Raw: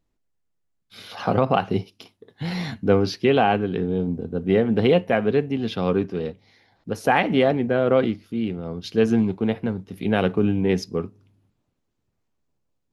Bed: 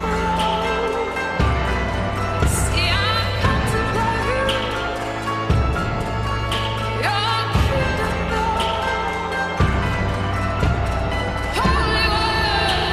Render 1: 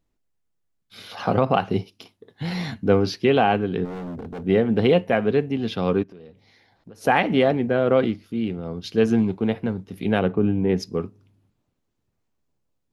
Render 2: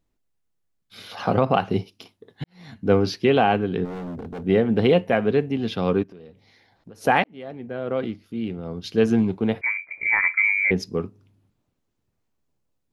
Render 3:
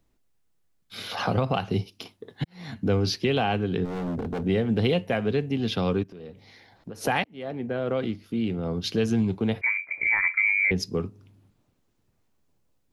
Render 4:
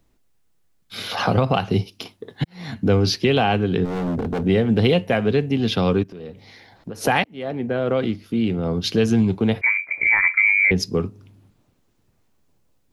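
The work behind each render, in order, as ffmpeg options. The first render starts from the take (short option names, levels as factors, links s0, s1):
-filter_complex "[0:a]asplit=3[s0][s1][s2];[s0]afade=t=out:st=3.84:d=0.02[s3];[s1]asoftclip=type=hard:threshold=0.0316,afade=t=in:st=3.84:d=0.02,afade=t=out:st=4.44:d=0.02[s4];[s2]afade=t=in:st=4.44:d=0.02[s5];[s3][s4][s5]amix=inputs=3:normalize=0,asplit=3[s6][s7][s8];[s6]afade=t=out:st=6.02:d=0.02[s9];[s7]acompressor=threshold=0.01:ratio=8:attack=3.2:release=140:knee=1:detection=peak,afade=t=in:st=6.02:d=0.02,afade=t=out:st=7.01:d=0.02[s10];[s8]afade=t=in:st=7.01:d=0.02[s11];[s9][s10][s11]amix=inputs=3:normalize=0,asplit=3[s12][s13][s14];[s12]afade=t=out:st=10.18:d=0.02[s15];[s13]lowpass=f=1400:p=1,afade=t=in:st=10.18:d=0.02,afade=t=out:st=10.79:d=0.02[s16];[s14]afade=t=in:st=10.79:d=0.02[s17];[s15][s16][s17]amix=inputs=3:normalize=0"
-filter_complex "[0:a]asettb=1/sr,asplit=3[s0][s1][s2];[s0]atrim=end=9.614[s3];[s1]atrim=start=9.61:end=10.71,asetpts=PTS-STARTPTS,afade=t=in:d=0.004:c=qsin,afade=t=out:st=1.096:d=0.004:c=qsin,lowpass=f=2100:t=q:w=0.5098,lowpass=f=2100:t=q:w=0.6013,lowpass=f=2100:t=q:w=0.9,lowpass=f=2100:t=q:w=2.563,afreqshift=-2500[s4];[s2]atrim=start=10.706[s5];[s3][s4]acrossfade=d=0.004:c1=hsin:c2=qsin[s6];[s6][s5]acrossfade=d=0.004:c1=qsin:c2=hsin,asplit=3[s7][s8][s9];[s7]atrim=end=2.44,asetpts=PTS-STARTPTS,afade=t=out:st=2.436:d=0.004:c=hsin[s10];[s8]atrim=start=2.44:end=7.24,asetpts=PTS-STARTPTS,afade=t=in:d=0.48:c=qua,afade=t=out:st=4.796:d=0.004:c=hsin[s11];[s9]atrim=start=7.24,asetpts=PTS-STARTPTS,afade=t=in:d=1.65[s12];[s10][s11][s12]concat=n=3:v=0:a=1"
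-filter_complex "[0:a]acrossover=split=130|3000[s0][s1][s2];[s1]acompressor=threshold=0.0224:ratio=2[s3];[s0][s3][s2]amix=inputs=3:normalize=0,asplit=2[s4][s5];[s5]alimiter=limit=0.0668:level=0:latency=1:release=432,volume=0.794[s6];[s4][s6]amix=inputs=2:normalize=0"
-af "volume=2"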